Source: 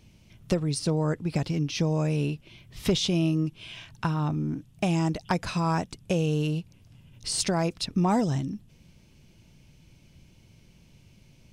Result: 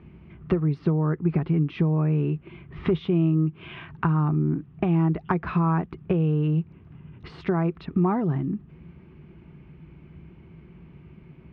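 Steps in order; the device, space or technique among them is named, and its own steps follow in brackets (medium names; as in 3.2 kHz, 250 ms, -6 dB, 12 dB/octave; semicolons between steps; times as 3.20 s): dynamic bell 3.5 kHz, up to +5 dB, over -48 dBFS, Q 2.9; bass amplifier (compression 3:1, threshold -33 dBFS, peak gain reduction 10.5 dB; cabinet simulation 61–2100 Hz, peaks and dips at 62 Hz +8 dB, 110 Hz -8 dB, 160 Hz +7 dB, 370 Hz +9 dB, 560 Hz -7 dB, 1.2 kHz +6 dB); trim +7.5 dB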